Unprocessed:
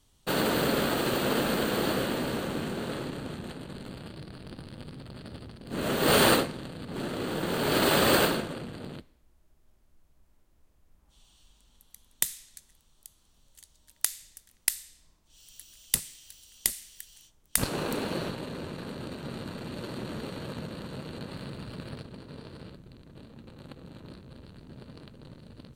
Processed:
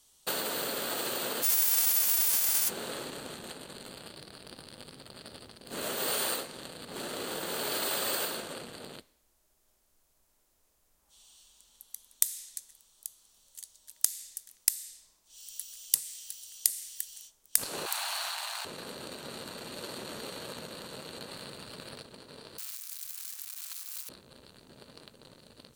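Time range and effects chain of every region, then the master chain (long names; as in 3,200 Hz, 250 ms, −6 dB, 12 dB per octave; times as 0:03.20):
0:01.42–0:02.68: spectral envelope flattened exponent 0.1 + notch filter 3,900 Hz, Q 16
0:17.86–0:18.65: mu-law and A-law mismatch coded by mu + Butterworth high-pass 690 Hz 72 dB per octave + envelope flattener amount 50%
0:22.58–0:24.09: spike at every zero crossing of −33.5 dBFS + high-pass filter 1,100 Hz 24 dB per octave + parametric band 2,400 Hz +2.5 dB 0.31 octaves
whole clip: parametric band 310 Hz −3 dB 0.41 octaves; downward compressor 8 to 1, threshold −30 dBFS; bass and treble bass −13 dB, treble +10 dB; level −1 dB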